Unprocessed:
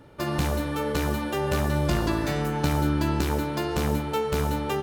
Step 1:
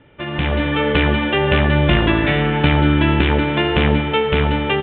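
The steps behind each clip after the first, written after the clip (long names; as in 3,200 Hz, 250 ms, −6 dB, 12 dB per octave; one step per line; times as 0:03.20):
Butterworth low-pass 3,500 Hz 96 dB per octave
high shelf with overshoot 1,600 Hz +6 dB, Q 1.5
automatic gain control gain up to 11.5 dB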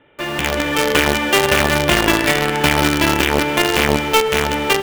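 bass and treble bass −11 dB, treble −1 dB
in parallel at −3.5 dB: log-companded quantiser 2 bits
on the sum: boost into a limiter +0.5 dB
level −1 dB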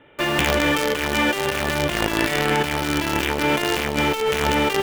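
compressor whose output falls as the input rises −20 dBFS, ratio −1
level −1.5 dB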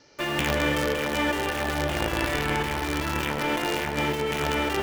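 noise in a band 4,000–6,200 Hz −56 dBFS
delay with a low-pass on its return 108 ms, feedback 79%, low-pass 1,700 Hz, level −5 dB
level −6.5 dB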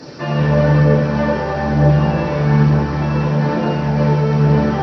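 linear delta modulator 32 kbit/s, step −36.5 dBFS
phase shifter 1.1 Hz, delay 2.3 ms, feedback 35%
convolution reverb RT60 0.45 s, pre-delay 3 ms, DRR −7 dB
level −9 dB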